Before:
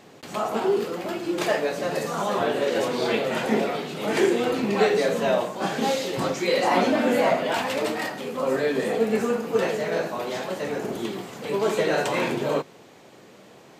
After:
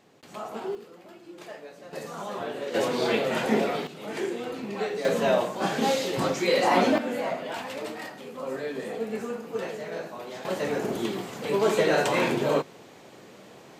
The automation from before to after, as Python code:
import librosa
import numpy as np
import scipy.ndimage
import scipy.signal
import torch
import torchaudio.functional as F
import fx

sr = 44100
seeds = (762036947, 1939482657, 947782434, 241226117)

y = fx.gain(x, sr, db=fx.steps((0.0, -10.0), (0.75, -18.5), (1.93, -9.5), (2.74, -1.0), (3.87, -10.0), (5.05, -0.5), (6.98, -9.0), (10.45, 0.5)))